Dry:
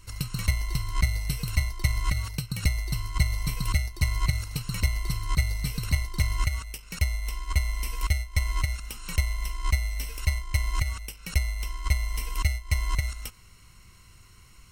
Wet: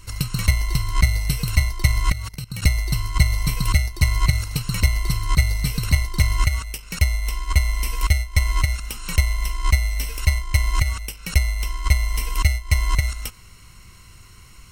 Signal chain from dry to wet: 2.12–2.62 level quantiser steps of 18 dB; gain +7 dB

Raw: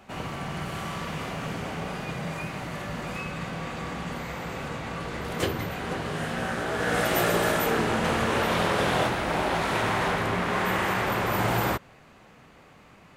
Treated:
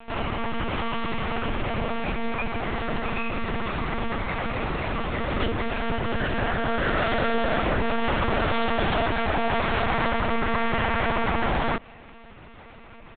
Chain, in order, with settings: comb 5 ms, depth 55%; in parallel at +1 dB: limiter -17.5 dBFS, peak gain reduction 7 dB; on the sum: compressor 2:1, threshold -23 dBFS, peak gain reduction 5.5 dB; monotone LPC vocoder at 8 kHz 230 Hz

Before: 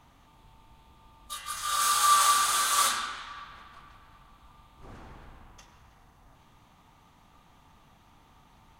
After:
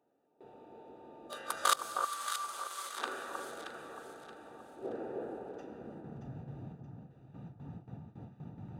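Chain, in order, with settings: Wiener smoothing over 41 samples; gate with hold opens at -52 dBFS; in parallel at +1.5 dB: compressor 5:1, threshold -42 dBFS, peak gain reduction 21 dB; on the sum: high-pass sweep 430 Hz -> 130 Hz, 5.45–6.23; flipped gate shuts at -16 dBFS, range -26 dB; on a send: echo with dull and thin repeats by turns 0.313 s, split 1300 Hz, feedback 59%, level -3 dB; on the sum: gain +6 dB

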